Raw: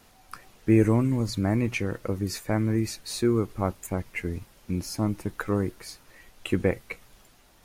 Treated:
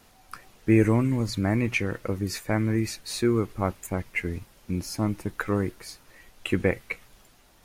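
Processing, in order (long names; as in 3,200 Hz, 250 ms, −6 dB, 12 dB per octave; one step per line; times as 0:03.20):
dynamic equaliser 2,100 Hz, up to +5 dB, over −45 dBFS, Q 1.1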